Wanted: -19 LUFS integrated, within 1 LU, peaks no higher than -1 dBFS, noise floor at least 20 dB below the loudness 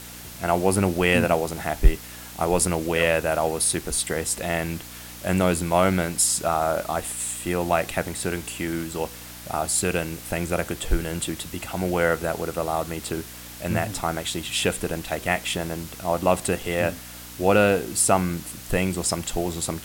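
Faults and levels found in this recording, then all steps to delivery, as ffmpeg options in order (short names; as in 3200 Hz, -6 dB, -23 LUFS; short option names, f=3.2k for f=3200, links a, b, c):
hum 60 Hz; harmonics up to 300 Hz; hum level -44 dBFS; noise floor -40 dBFS; noise floor target -45 dBFS; loudness -24.5 LUFS; peak -3.0 dBFS; loudness target -19.0 LUFS
-> -af "bandreject=f=60:t=h:w=4,bandreject=f=120:t=h:w=4,bandreject=f=180:t=h:w=4,bandreject=f=240:t=h:w=4,bandreject=f=300:t=h:w=4"
-af "afftdn=nr=6:nf=-40"
-af "volume=5.5dB,alimiter=limit=-1dB:level=0:latency=1"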